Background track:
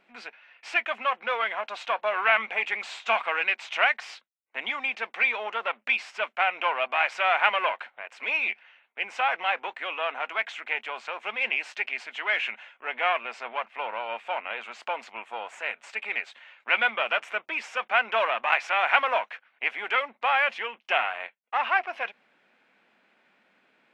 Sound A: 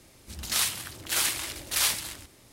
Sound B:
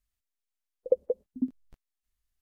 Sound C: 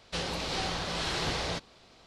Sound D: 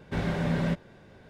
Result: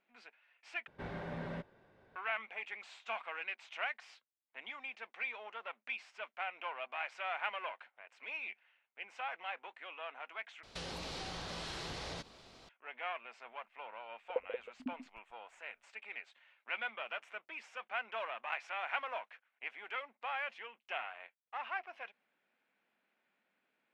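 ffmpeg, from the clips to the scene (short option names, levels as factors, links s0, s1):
-filter_complex "[0:a]volume=0.158[s0];[4:a]firequalizer=gain_entry='entry(200,0);entry(380,5);entry(860,8);entry(2500,4);entry(7100,-6)':delay=0.05:min_phase=1[s1];[3:a]acompressor=threshold=0.0112:ratio=6:attack=3.2:release=140:knee=1:detection=peak[s2];[2:a]aecho=1:1:136:0.282[s3];[s0]asplit=3[s4][s5][s6];[s4]atrim=end=0.874[s7];[s1]atrim=end=1.29,asetpts=PTS-STARTPTS,volume=0.141[s8];[s5]atrim=start=2.156:end=10.634[s9];[s2]atrim=end=2.06,asetpts=PTS-STARTPTS,volume=0.891[s10];[s6]atrim=start=12.686[s11];[s3]atrim=end=2.41,asetpts=PTS-STARTPTS,volume=0.237,afade=t=in:d=0.004:c=hsin,afade=t=out:st=2.406:d=0.004:c=hsin,adelay=13440[s12];[s7][s8]acrossfade=d=0.004:c1=hsin:c2=hsin[s13];[s13][s9]acrossfade=d=0.004:c1=hsin:c2=hsin[s14];[s14][s10]acrossfade=d=0.004:c1=hsin:c2=hsin[s15];[s15][s11]acrossfade=d=0.004:c1=hsin:c2=hsin[s16];[s16][s12]amix=inputs=2:normalize=0"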